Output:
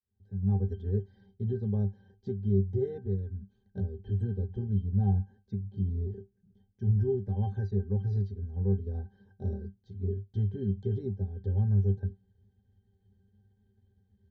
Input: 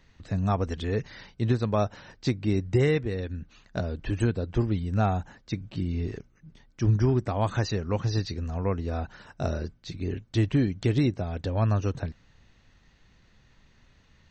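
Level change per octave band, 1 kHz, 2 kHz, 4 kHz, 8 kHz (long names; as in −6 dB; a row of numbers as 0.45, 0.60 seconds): −16.5 dB, below −20 dB, below −25 dB, below −30 dB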